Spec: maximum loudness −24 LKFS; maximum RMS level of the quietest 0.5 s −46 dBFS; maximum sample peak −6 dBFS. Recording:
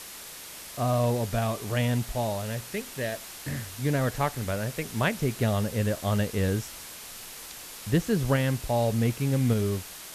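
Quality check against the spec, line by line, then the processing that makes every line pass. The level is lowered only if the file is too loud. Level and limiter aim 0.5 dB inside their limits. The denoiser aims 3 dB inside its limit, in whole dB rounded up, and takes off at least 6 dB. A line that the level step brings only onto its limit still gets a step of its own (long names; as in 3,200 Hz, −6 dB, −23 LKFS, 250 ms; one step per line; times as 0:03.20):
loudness −28.0 LKFS: in spec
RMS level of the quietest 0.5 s −43 dBFS: out of spec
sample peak −10.5 dBFS: in spec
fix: broadband denoise 6 dB, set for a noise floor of −43 dBFS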